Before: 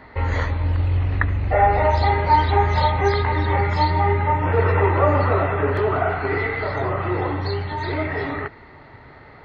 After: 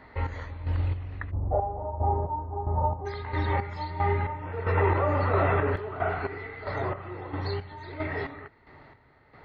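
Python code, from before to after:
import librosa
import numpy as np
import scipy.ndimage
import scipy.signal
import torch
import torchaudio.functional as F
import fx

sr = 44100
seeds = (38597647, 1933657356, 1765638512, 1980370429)

y = fx.steep_lowpass(x, sr, hz=1000.0, slope=36, at=(1.3, 3.05), fade=0.02)
y = fx.chopper(y, sr, hz=1.5, depth_pct=65, duty_pct=40)
y = fx.env_flatten(y, sr, amount_pct=70, at=(4.77, 5.76))
y = y * 10.0 ** (-6.5 / 20.0)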